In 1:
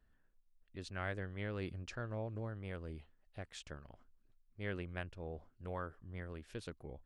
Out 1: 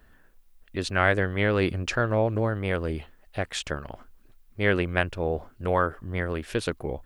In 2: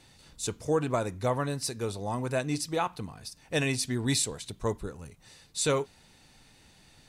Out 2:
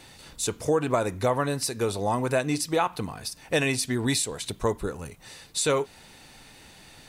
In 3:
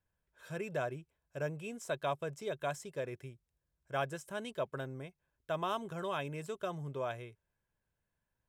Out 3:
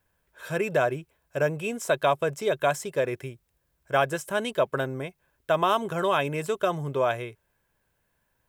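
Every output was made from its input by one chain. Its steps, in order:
treble shelf 8.5 kHz +11.5 dB; compression 2.5:1, threshold -31 dBFS; tone controls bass -5 dB, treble -7 dB; normalise loudness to -27 LUFS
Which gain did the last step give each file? +20.0 dB, +10.0 dB, +14.0 dB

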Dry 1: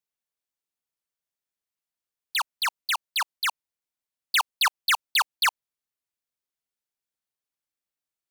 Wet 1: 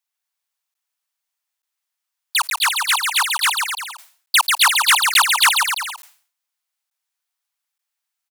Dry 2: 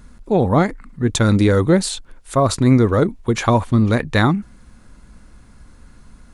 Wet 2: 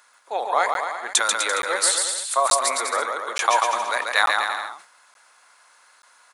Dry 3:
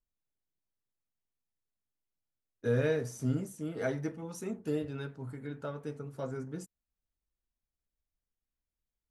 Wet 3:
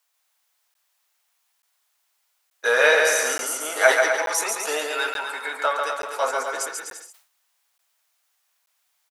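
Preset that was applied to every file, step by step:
high-pass 740 Hz 24 dB/octave; dynamic bell 9.7 kHz, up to +8 dB, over -47 dBFS, Q 1.5; on a send: bouncing-ball echo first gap 140 ms, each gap 0.8×, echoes 5; on the sum: crackling interface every 0.88 s, samples 512, zero, from 0.74 s; decay stretcher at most 130 dB/s; peak normalisation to -1.5 dBFS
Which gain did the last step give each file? +7.0 dB, +1.0 dB, +23.0 dB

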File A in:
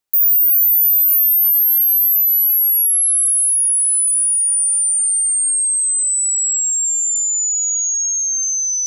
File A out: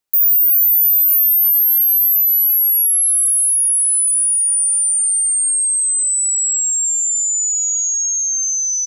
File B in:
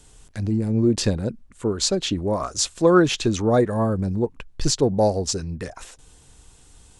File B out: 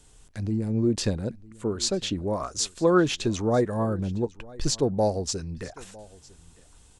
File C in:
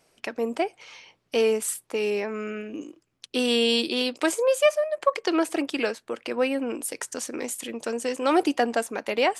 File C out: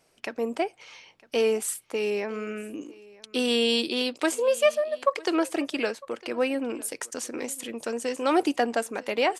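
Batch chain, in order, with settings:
delay 955 ms -22.5 dB; peak normalisation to -9 dBFS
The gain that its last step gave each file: +0.5 dB, -4.5 dB, -1.5 dB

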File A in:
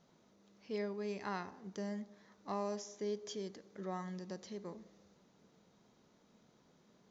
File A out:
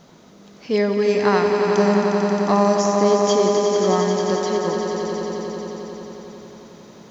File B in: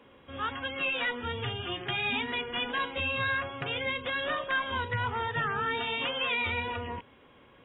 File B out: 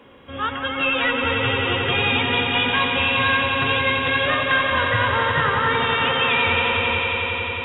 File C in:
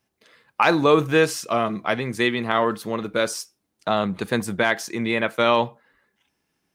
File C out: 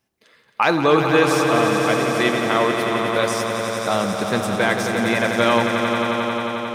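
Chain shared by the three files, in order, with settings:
echo with a slow build-up 89 ms, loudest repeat 5, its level -8.5 dB; normalise loudness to -19 LUFS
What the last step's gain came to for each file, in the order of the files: +20.0 dB, +8.0 dB, +0.5 dB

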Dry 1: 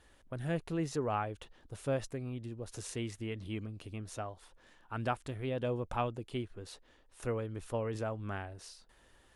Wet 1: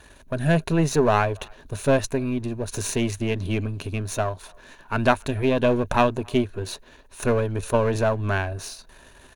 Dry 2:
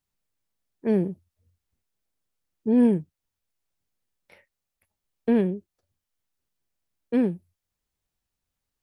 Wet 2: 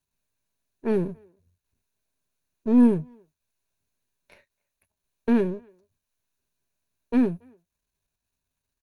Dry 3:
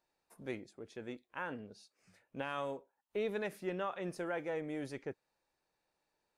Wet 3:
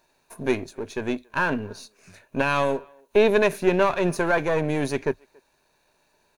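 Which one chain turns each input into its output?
partial rectifier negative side -7 dB; rippled EQ curve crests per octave 1.5, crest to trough 7 dB; speakerphone echo 280 ms, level -29 dB; normalise loudness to -24 LUFS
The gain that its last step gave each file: +17.0 dB, +2.5 dB, +19.5 dB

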